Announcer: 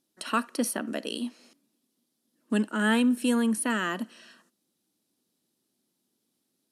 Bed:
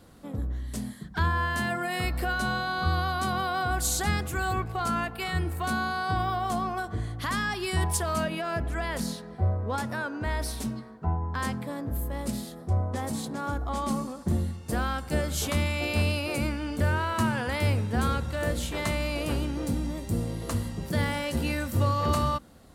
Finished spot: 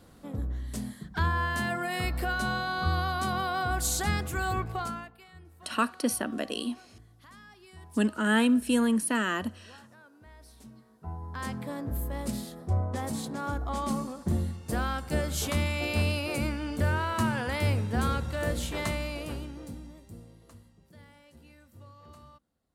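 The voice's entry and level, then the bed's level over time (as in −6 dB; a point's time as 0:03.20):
5.45 s, 0.0 dB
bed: 0:04.76 −1.5 dB
0:05.27 −23 dB
0:10.37 −23 dB
0:11.67 −1.5 dB
0:18.82 −1.5 dB
0:20.80 −26.5 dB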